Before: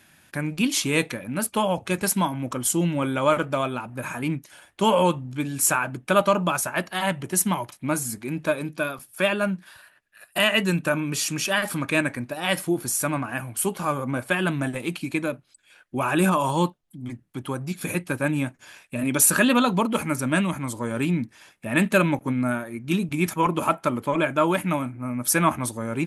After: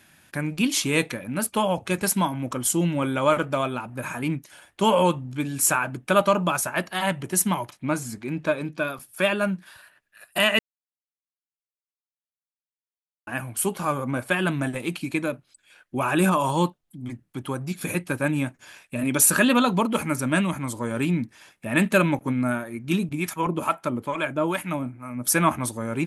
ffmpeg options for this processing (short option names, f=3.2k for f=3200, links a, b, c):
-filter_complex "[0:a]asettb=1/sr,asplit=3[a][b][c];[a]atrim=end=7.724[d];[b]atrim=start=7.72:end=8.88,asetpts=PTS-STARTPTS,afade=t=in:d=0.004:c=qsin,afade=t=out:st=1.156:d=0.004:c=qsin,equalizer=f=11k:w=0.88:g=-10.5[e];[c]atrim=start=8.876[f];[d][e]acrossfade=d=0.004:c1=hsin:c2=qsin[g];[g][f]acrossfade=d=0.004:c1=qsin:c2=hsin,asettb=1/sr,asplit=3[h][i][j];[h]atrim=end=23.094[k];[i]atrim=start=23.09:end=25.27,asetpts=PTS-STARTPTS,afade=t=in:d=0.004:c=qsin,afade=t=out:st=2.176:d=0.004:c=qsin,acrossover=split=690[l][m];[l]aeval=exprs='val(0)*(1-0.7/2+0.7/2*cos(2*PI*2.3*n/s))':c=same[n];[m]aeval=exprs='val(0)*(1-0.7/2-0.7/2*cos(2*PI*2.3*n/s))':c=same[o];[n][o]amix=inputs=2:normalize=0[p];[j]atrim=start=25.266[q];[k][p]acrossfade=d=0.004:c1=hsin:c2=qsin[r];[r][q]acrossfade=d=0.004:c1=qsin:c2=hsin,asplit=3[s][t][u];[s]atrim=end=10.59,asetpts=PTS-STARTPTS,afade=t=out:st=10.586:d=0.004:c=hsin[v];[t]atrim=start=10.59:end=13.27,asetpts=PTS-STARTPTS,volume=0[w];[u]atrim=start=13.27,asetpts=PTS-STARTPTS,afade=t=in:d=0.004:c=hsin[x];[v][w][x]concat=n=3:v=0:a=1"